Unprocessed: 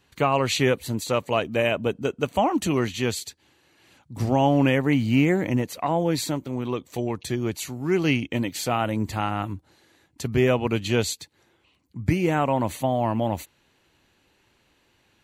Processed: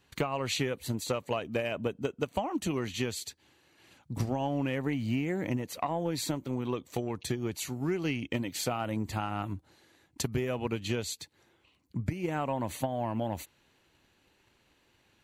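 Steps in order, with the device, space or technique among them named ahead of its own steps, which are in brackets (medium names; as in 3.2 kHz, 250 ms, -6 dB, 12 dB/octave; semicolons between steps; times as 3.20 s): 10.23–10.65 s: peaking EQ 12 kHz +5.5 dB 1.1 oct; drum-bus smash (transient shaper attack +8 dB, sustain +1 dB; compression 6:1, threshold -23 dBFS, peak gain reduction 14.5 dB; saturation -13 dBFS, distortion -23 dB); trim -4 dB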